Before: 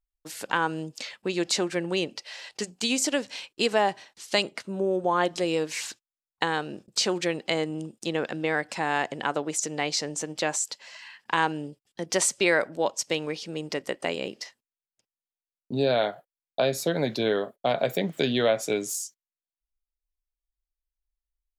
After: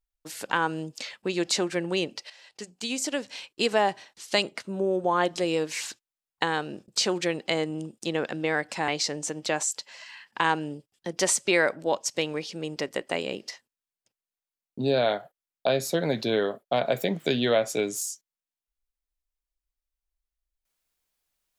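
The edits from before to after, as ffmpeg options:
ffmpeg -i in.wav -filter_complex "[0:a]asplit=3[link_01][link_02][link_03];[link_01]atrim=end=2.3,asetpts=PTS-STARTPTS,afade=type=out:start_time=2.296:duration=0.004:curve=hsin:silence=0.237137[link_04];[link_02]atrim=start=2.3:end=8.882,asetpts=PTS-STARTPTS,afade=type=in:duration=1.43:silence=0.237137[link_05];[link_03]atrim=start=9.808[link_06];[link_04][link_05]concat=n=2:v=0:a=1[link_07];[link_07][link_06]acrossfade=duration=0.004:curve1=hsin:curve2=hsin" out.wav

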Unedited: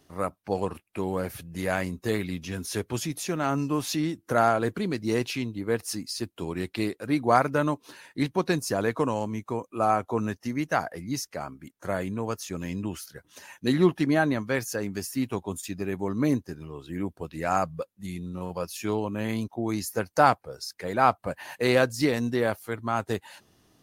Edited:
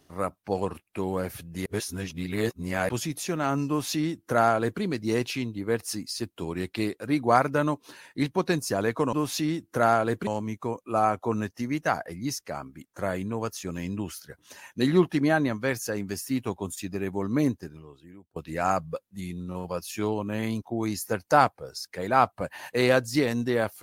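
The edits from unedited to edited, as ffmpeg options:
ffmpeg -i in.wav -filter_complex "[0:a]asplit=6[link_01][link_02][link_03][link_04][link_05][link_06];[link_01]atrim=end=1.662[link_07];[link_02]atrim=start=1.658:end=2.892,asetpts=PTS-STARTPTS,areverse[link_08];[link_03]atrim=start=2.888:end=9.132[link_09];[link_04]atrim=start=3.678:end=4.822[link_10];[link_05]atrim=start=9.128:end=17.22,asetpts=PTS-STARTPTS,afade=type=out:start_time=7.292:duration=0.8:curve=qua:silence=0.0668344[link_11];[link_06]atrim=start=17.22,asetpts=PTS-STARTPTS,afade=type=in:duration=0.004:curve=hsin:silence=0.0668344[link_12];[link_07][link_08]acrossfade=duration=0.004:curve1=hsin:curve2=hsin[link_13];[link_13][link_09]acrossfade=duration=0.004:curve1=hsin:curve2=hsin[link_14];[link_14][link_10]acrossfade=duration=0.004:curve1=hsin:curve2=hsin[link_15];[link_11][link_12]concat=n=2:v=0:a=1[link_16];[link_15][link_16]acrossfade=duration=0.004:curve1=hsin:curve2=hsin" out.wav

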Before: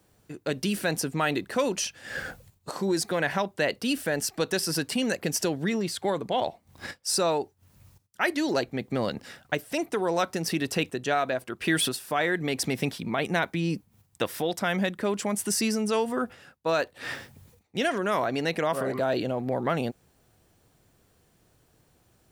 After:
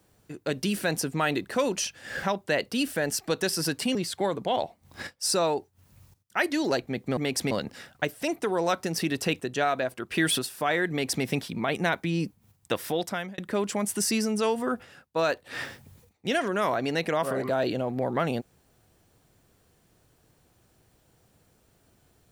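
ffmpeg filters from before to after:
ffmpeg -i in.wav -filter_complex "[0:a]asplit=6[link_01][link_02][link_03][link_04][link_05][link_06];[link_01]atrim=end=2.232[link_07];[link_02]atrim=start=3.328:end=5.052[link_08];[link_03]atrim=start=5.788:end=9.012[link_09];[link_04]atrim=start=12.398:end=12.742[link_10];[link_05]atrim=start=9.008:end=14.88,asetpts=PTS-STARTPTS,afade=type=out:start_time=5.512:duration=0.36[link_11];[link_06]atrim=start=14.88,asetpts=PTS-STARTPTS,afade=type=in:duration=0.004:curve=hsin[link_12];[link_07][link_08]acrossfade=duration=0.004:curve1=hsin:curve2=hsin[link_13];[link_13][link_09]acrossfade=duration=0.004:curve1=hsin:curve2=hsin[link_14];[link_14][link_10]acrossfade=duration=0.004:curve1=hsin:curve2=hsin[link_15];[link_11][link_12]concat=n=2:v=0:a=1[link_16];[link_15][link_16]acrossfade=duration=0.004:curve1=hsin:curve2=hsin" out.wav

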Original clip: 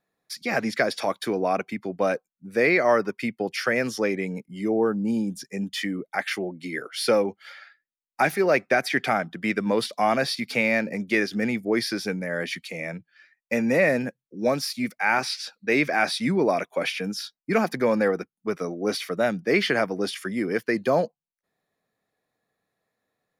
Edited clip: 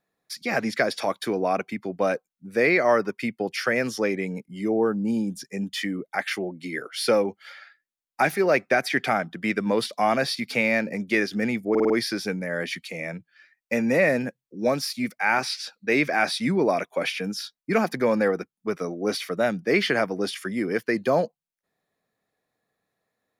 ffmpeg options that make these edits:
ffmpeg -i in.wav -filter_complex "[0:a]asplit=5[link_01][link_02][link_03][link_04][link_05];[link_01]atrim=end=11.752[link_06];[link_02]atrim=start=11.698:end=11.752[link_07];[link_03]atrim=start=11.698:end=11.752[link_08];[link_04]atrim=start=11.698:end=11.752[link_09];[link_05]atrim=start=11.698[link_10];[link_06][link_07]acrossfade=duration=0.004:curve1=hsin:curve2=hsin[link_11];[link_11][link_08]acrossfade=duration=0.004:curve1=hsin:curve2=hsin[link_12];[link_12][link_09]acrossfade=duration=0.004:curve1=hsin:curve2=hsin[link_13];[link_13][link_10]acrossfade=duration=0.004:curve1=hsin:curve2=hsin" out.wav

